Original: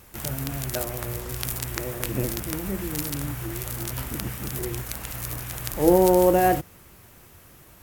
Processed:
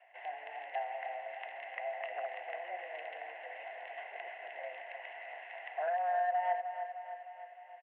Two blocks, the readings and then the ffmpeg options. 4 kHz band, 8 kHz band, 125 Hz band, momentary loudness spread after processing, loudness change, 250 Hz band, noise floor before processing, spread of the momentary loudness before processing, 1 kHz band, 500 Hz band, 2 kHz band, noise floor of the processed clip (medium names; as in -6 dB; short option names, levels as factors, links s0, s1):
-18.5 dB, under -40 dB, under -40 dB, 13 LU, -14.0 dB, under -40 dB, -51 dBFS, 13 LU, -6.5 dB, -15.0 dB, -5.5 dB, -53 dBFS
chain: -filter_complex "[0:a]asplit=3[s0][s1][s2];[s0]bandpass=f=530:t=q:w=8,volume=1[s3];[s1]bandpass=f=1840:t=q:w=8,volume=0.501[s4];[s2]bandpass=f=2480:t=q:w=8,volume=0.355[s5];[s3][s4][s5]amix=inputs=3:normalize=0,acompressor=threshold=0.0158:ratio=4,asoftclip=type=hard:threshold=0.02,acrossover=split=530 2200:gain=0.0891 1 0.1[s6][s7][s8];[s6][s7][s8]amix=inputs=3:normalize=0,aecho=1:1:307|614|921|1228|1535|1842|2149:0.355|0.209|0.124|0.0729|0.043|0.0254|0.015,highpass=f=160:t=q:w=0.5412,highpass=f=160:t=q:w=1.307,lowpass=f=3000:t=q:w=0.5176,lowpass=f=3000:t=q:w=0.7071,lowpass=f=3000:t=q:w=1.932,afreqshift=170,volume=2.99"